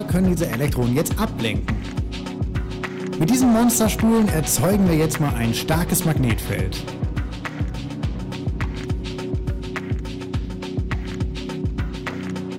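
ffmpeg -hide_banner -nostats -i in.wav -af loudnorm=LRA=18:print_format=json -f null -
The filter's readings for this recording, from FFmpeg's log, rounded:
"input_i" : "-23.0",
"input_tp" : "-10.0",
"input_lra" : "8.3",
"input_thresh" : "-33.0",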